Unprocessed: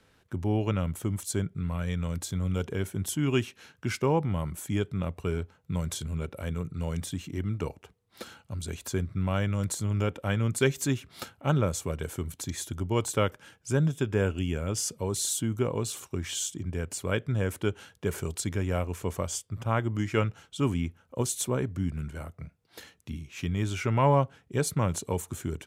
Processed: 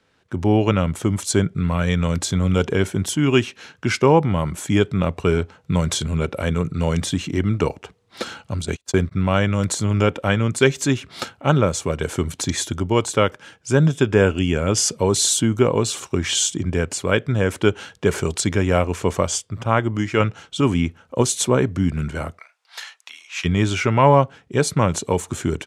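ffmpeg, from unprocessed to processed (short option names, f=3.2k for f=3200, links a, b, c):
-filter_complex "[0:a]asplit=3[a][b][c];[a]afade=t=out:st=8.54:d=0.02[d];[b]agate=range=-34dB:threshold=-37dB:ratio=16:release=100:detection=peak,afade=t=in:st=8.54:d=0.02,afade=t=out:st=9.11:d=0.02[e];[c]afade=t=in:st=9.11:d=0.02[f];[d][e][f]amix=inputs=3:normalize=0,asplit=3[g][h][i];[g]afade=t=out:st=22.37:d=0.02[j];[h]highpass=f=840:w=0.5412,highpass=f=840:w=1.3066,afade=t=in:st=22.37:d=0.02,afade=t=out:st=23.44:d=0.02[k];[i]afade=t=in:st=23.44:d=0.02[l];[j][k][l]amix=inputs=3:normalize=0,asplit=3[m][n][o];[m]atrim=end=20.202[p];[n]atrim=start=20.198:end=20.612,asetpts=PTS-STARTPTS,volume=3.5dB[q];[o]atrim=start=20.608[r];[p][q]acrossfade=d=0.004:c1=hsin:c2=hsin[s];[s][r]acrossfade=d=0.004:c1=hsin:c2=hsin,lowpass=7.4k,lowshelf=f=110:g=-9,dynaudnorm=f=210:g=3:m=14.5dB"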